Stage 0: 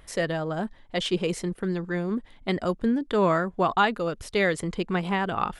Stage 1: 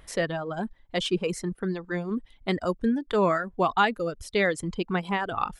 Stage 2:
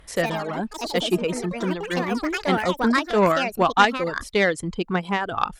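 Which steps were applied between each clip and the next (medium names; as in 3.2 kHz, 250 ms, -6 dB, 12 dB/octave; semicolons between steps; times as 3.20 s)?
reverb removal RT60 1.2 s
Chebyshev shaper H 3 -16 dB, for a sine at -10 dBFS; ever faster or slower copies 106 ms, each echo +5 st, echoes 3, each echo -6 dB; trim +8 dB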